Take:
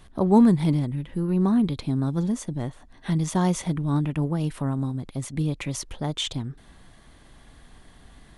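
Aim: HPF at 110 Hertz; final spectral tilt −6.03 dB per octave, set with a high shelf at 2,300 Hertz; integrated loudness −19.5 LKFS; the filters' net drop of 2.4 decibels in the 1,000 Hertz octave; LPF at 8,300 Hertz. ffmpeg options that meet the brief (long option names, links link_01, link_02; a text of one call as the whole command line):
ffmpeg -i in.wav -af "highpass=110,lowpass=8300,equalizer=frequency=1000:width_type=o:gain=-3.5,highshelf=frequency=2300:gain=3.5,volume=6dB" out.wav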